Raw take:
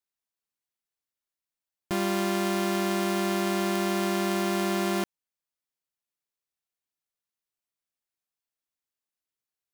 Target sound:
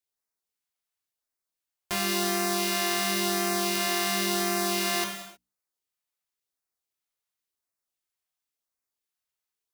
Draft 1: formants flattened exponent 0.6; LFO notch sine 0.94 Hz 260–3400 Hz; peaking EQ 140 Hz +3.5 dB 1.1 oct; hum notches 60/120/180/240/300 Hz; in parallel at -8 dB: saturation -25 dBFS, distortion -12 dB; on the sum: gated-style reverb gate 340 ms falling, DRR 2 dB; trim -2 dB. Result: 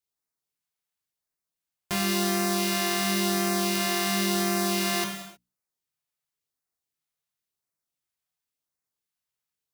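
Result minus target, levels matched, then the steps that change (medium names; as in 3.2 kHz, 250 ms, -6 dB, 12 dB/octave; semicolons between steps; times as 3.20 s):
125 Hz band +5.5 dB
change: peaking EQ 140 Hz -7.5 dB 1.1 oct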